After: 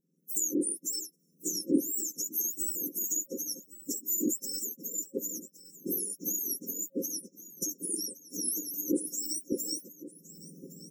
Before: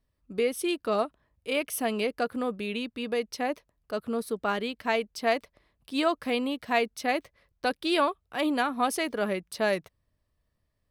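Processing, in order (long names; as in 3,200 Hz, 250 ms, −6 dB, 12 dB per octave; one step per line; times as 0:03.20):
frequency axis turned over on the octave scale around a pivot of 1,800 Hz
camcorder AGC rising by 41 dB per second
on a send: single-tap delay 1,115 ms −17 dB
on the sum: brick-wall band-stop 540–5,300 Hz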